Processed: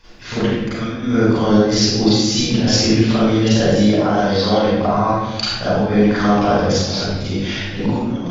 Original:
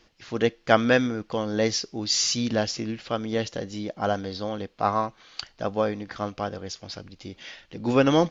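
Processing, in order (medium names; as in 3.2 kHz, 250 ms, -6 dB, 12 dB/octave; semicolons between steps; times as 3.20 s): 3.91–4.63 s: bass shelf 340 Hz -6.5 dB; compressor with a negative ratio -29 dBFS, ratio -0.5; reverberation RT60 1.0 s, pre-delay 34 ms, DRR -12 dB; trim -3.5 dB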